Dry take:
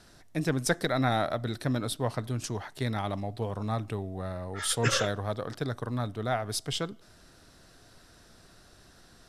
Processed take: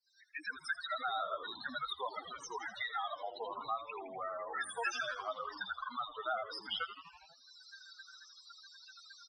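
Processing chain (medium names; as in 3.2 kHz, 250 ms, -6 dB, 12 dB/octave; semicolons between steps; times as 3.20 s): fade-in on the opening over 1.42 s; high-pass 1.2 kHz 12 dB/octave; treble shelf 3 kHz +11 dB; loudest bins only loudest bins 8; tape spacing loss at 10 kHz 33 dB; frequency-shifting echo 81 ms, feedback 55%, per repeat -110 Hz, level -12.5 dB; three bands compressed up and down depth 70%; trim +8 dB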